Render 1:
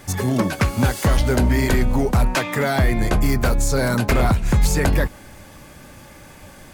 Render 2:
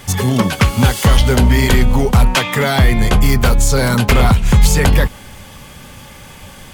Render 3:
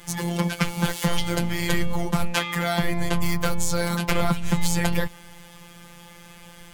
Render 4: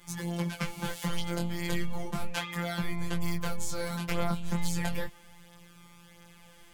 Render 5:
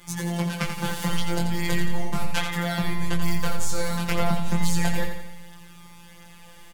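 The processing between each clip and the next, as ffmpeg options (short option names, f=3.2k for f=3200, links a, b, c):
-af "equalizer=f=315:t=o:w=0.33:g=-10,equalizer=f=630:t=o:w=0.33:g=-6,equalizer=f=1.6k:t=o:w=0.33:g=-3,equalizer=f=3.15k:t=o:w=0.33:g=7,volume=7dB"
-af "afftfilt=real='hypot(re,im)*cos(PI*b)':imag='0':win_size=1024:overlap=0.75,volume=-6dB"
-af "flanger=delay=16.5:depth=7:speed=0.34,volume=-6.5dB"
-af "aecho=1:1:86|172|258|344|430|516:0.447|0.228|0.116|0.0593|0.0302|0.0154,volume=6dB"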